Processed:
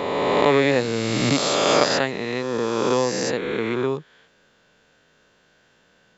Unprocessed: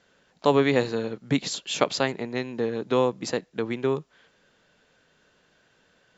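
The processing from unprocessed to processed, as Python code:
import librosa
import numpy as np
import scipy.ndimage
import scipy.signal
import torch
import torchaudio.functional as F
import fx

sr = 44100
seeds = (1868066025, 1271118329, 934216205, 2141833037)

y = fx.spec_swells(x, sr, rise_s=2.57)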